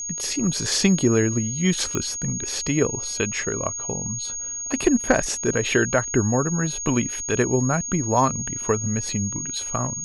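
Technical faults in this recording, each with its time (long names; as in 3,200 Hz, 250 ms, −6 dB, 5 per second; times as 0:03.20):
whistle 6,600 Hz −28 dBFS
0:01.95: click −11 dBFS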